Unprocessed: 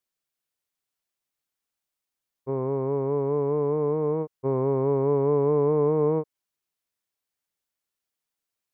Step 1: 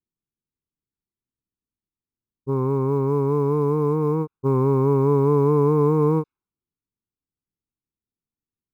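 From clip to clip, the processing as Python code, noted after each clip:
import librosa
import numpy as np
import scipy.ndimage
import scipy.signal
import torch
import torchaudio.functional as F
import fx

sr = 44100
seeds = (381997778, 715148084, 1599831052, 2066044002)

y = fx.env_lowpass(x, sr, base_hz=380.0, full_db=-18.0)
y = fx.quant_float(y, sr, bits=6)
y = y + 0.99 * np.pad(y, (int(0.8 * sr / 1000.0), 0))[:len(y)]
y = y * librosa.db_to_amplitude(3.0)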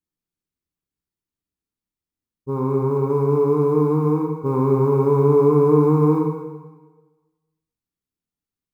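y = fx.rev_plate(x, sr, seeds[0], rt60_s=1.3, hf_ratio=0.95, predelay_ms=0, drr_db=0.0)
y = y * librosa.db_to_amplitude(-1.0)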